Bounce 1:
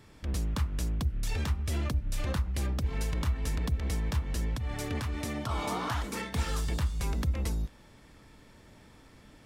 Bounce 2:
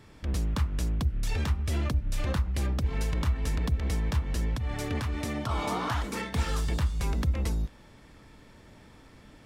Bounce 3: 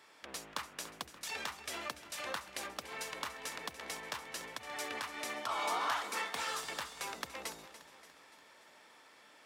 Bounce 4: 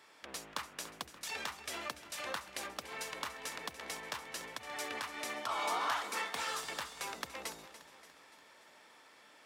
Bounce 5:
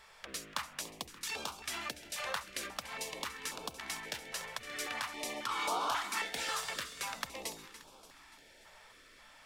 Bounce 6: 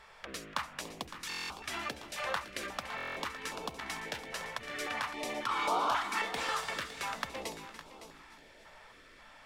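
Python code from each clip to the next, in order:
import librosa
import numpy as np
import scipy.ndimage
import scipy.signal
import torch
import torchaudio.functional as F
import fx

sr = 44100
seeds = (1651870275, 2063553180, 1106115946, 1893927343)

y1 = fx.high_shelf(x, sr, hz=6000.0, db=-4.5)
y1 = y1 * librosa.db_to_amplitude(2.5)
y2 = scipy.signal.sosfilt(scipy.signal.butter(2, 690.0, 'highpass', fs=sr, output='sos'), y1)
y2 = fx.echo_feedback(y2, sr, ms=289, feedback_pct=55, wet_db=-14)
y2 = y2 * librosa.db_to_amplitude(-1.0)
y3 = y2
y4 = fx.dmg_noise_colour(y3, sr, seeds[0], colour='brown', level_db=-74.0)
y4 = fx.filter_held_notch(y4, sr, hz=3.7, low_hz=290.0, high_hz=1900.0)
y4 = y4 * librosa.db_to_amplitude(3.0)
y5 = fx.high_shelf(y4, sr, hz=3900.0, db=-11.0)
y5 = y5 + 10.0 ** (-13.0 / 20.0) * np.pad(y5, (int(560 * sr / 1000.0), 0))[:len(y5)]
y5 = fx.buffer_glitch(y5, sr, at_s=(1.29, 2.96), block=1024, repeats=8)
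y5 = y5 * librosa.db_to_amplitude(4.5)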